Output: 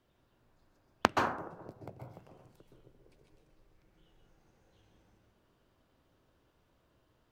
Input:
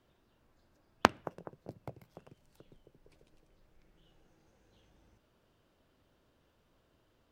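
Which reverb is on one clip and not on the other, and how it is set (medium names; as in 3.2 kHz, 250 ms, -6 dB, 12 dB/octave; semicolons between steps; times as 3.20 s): plate-style reverb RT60 0.65 s, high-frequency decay 0.4×, pre-delay 115 ms, DRR 1 dB; trim -2.5 dB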